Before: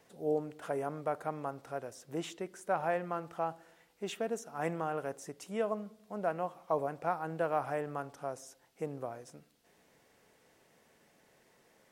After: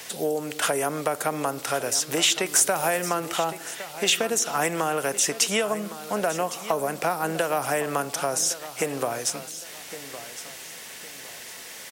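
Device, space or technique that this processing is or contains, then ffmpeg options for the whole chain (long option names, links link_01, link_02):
mastering chain: -filter_complex "[0:a]equalizer=frequency=3000:width_type=o:width=0.77:gain=1.5,acrossover=split=190|530|6300[link_01][link_02][link_03][link_04];[link_01]acompressor=threshold=-58dB:ratio=4[link_05];[link_02]acompressor=threshold=-40dB:ratio=4[link_06];[link_03]acompressor=threshold=-46dB:ratio=4[link_07];[link_04]acompressor=threshold=-58dB:ratio=4[link_08];[link_05][link_06][link_07][link_08]amix=inputs=4:normalize=0,acompressor=threshold=-38dB:ratio=3,tiltshelf=frequency=1400:gain=-9.5,alimiter=level_in=30dB:limit=-1dB:release=50:level=0:latency=1,aecho=1:1:1111|2222|3333:0.2|0.0638|0.0204,asettb=1/sr,asplit=3[link_09][link_10][link_11];[link_09]atrim=end=2.464[link_12];[link_10]atrim=start=2.46:end=3.09,asetpts=PTS-STARTPTS,afade=type=in:duration=0.004:curve=qsin,afade=type=out:start_time=0.626:duration=0.004:curve=qsin,highshelf=frequency=6400:gain=8.5[link_13];[link_11]atrim=start=3.086[link_14];[link_12][link_13]acrossfade=duration=0.004:curve1=hsin:curve2=qsin[link_15];[link_15][link_14]acrossfade=duration=0.004:curve1=qsin:curve2=hsin,volume=-7dB"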